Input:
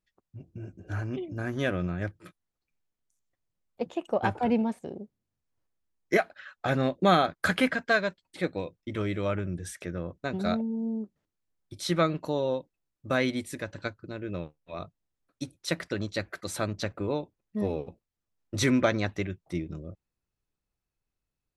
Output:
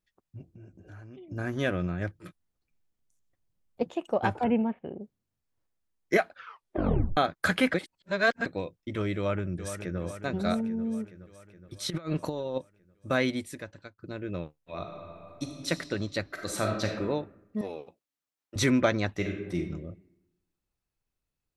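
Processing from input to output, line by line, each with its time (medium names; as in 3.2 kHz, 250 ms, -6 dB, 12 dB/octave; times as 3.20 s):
0.45–1.31 s: compression 3:1, threshold -49 dBFS
2.18–3.83 s: bass shelf 340 Hz +7 dB
4.44–5.01 s: Chebyshev low-pass 3 kHz, order 5
6.32 s: tape stop 0.85 s
7.74–8.46 s: reverse
9.16–10.00 s: echo throw 420 ms, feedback 65%, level -9.5 dB
11.90–12.58 s: compressor with a negative ratio -31 dBFS, ratio -0.5
13.31–13.98 s: fade out, to -24 dB
14.59–15.68 s: reverb throw, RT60 2.8 s, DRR 1.5 dB
16.26–17.01 s: reverb throw, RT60 0.92 s, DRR 1.5 dB
17.61–18.56 s: high-pass 870 Hz 6 dB/octave
19.13–19.56 s: reverb throw, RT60 1 s, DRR 1 dB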